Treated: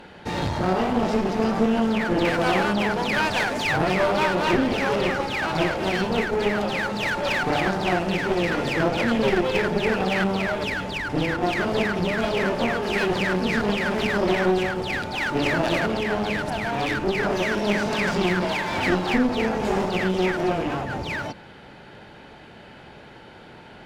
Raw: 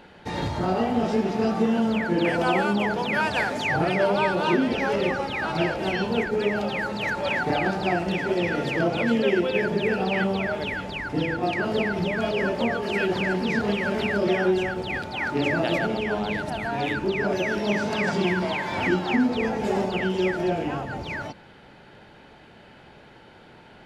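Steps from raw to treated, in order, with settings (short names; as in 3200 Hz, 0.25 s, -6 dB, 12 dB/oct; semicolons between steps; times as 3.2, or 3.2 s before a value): one-sided clip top -33 dBFS; gain +4.5 dB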